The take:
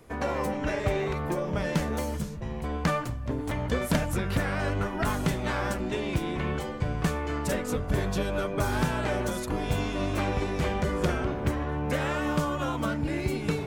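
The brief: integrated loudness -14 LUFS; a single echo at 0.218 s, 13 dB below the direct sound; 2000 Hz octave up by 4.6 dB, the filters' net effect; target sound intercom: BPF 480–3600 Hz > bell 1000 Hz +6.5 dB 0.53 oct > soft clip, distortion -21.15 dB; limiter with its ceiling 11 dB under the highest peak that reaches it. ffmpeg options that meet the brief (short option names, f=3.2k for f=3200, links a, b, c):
-af "equalizer=f=2k:t=o:g=5.5,alimiter=limit=-20dB:level=0:latency=1,highpass=480,lowpass=3.6k,equalizer=f=1k:t=o:w=0.53:g=6.5,aecho=1:1:218:0.224,asoftclip=threshold=-22dB,volume=18.5dB"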